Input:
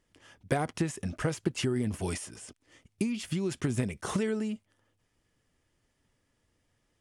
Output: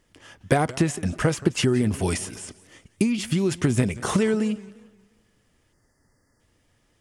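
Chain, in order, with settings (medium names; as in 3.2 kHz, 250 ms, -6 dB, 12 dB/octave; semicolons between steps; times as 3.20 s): spectral selection erased 5.73–6.40 s, 2.1–4.4 kHz; modulated delay 176 ms, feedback 40%, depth 172 cents, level -19 dB; trim +8.5 dB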